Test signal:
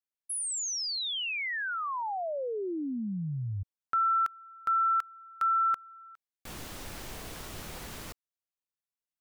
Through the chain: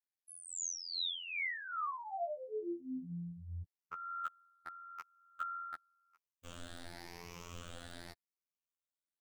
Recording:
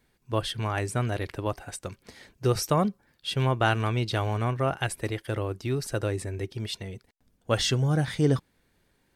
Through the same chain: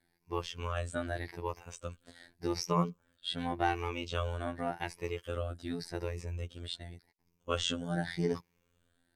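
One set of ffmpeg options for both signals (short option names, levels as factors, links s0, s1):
-filter_complex "[0:a]afftfilt=real='re*pow(10,11/40*sin(2*PI*(0.79*log(max(b,1)*sr/1024/100)/log(2)-(0.87)*(pts-256)/sr)))':imag='im*pow(10,11/40*sin(2*PI*(0.79*log(max(b,1)*sr/1024/100)/log(2)-(0.87)*(pts-256)/sr)))':win_size=1024:overlap=0.75,afftfilt=real='hypot(re,im)*cos(PI*b)':imag='0':win_size=2048:overlap=0.75,acrossover=split=7900[s0][s1];[s1]acompressor=threshold=0.002:ratio=4:attack=1:release=60[s2];[s0][s2]amix=inputs=2:normalize=0,volume=0.562"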